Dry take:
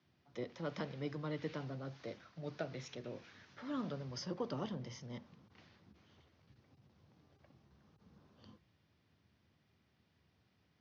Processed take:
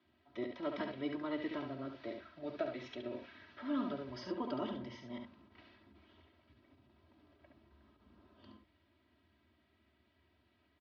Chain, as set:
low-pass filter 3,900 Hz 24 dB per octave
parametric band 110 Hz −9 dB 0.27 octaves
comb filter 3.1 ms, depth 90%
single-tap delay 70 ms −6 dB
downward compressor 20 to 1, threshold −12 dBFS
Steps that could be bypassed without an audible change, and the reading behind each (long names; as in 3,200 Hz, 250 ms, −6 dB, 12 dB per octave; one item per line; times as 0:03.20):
downward compressor, threshold −12 dBFS: peak of its input −24.5 dBFS